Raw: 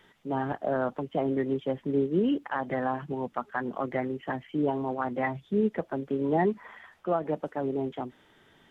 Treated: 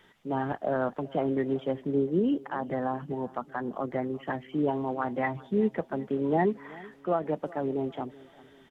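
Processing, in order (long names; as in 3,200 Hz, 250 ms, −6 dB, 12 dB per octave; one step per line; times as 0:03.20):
0:01.82–0:04.16: dynamic equaliser 2,200 Hz, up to −7 dB, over −46 dBFS, Q 0.8
repeating echo 383 ms, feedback 45%, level −21 dB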